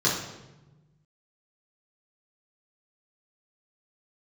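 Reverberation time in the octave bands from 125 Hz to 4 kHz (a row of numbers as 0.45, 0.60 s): 2.1, 1.6, 1.2, 0.95, 0.85, 0.75 s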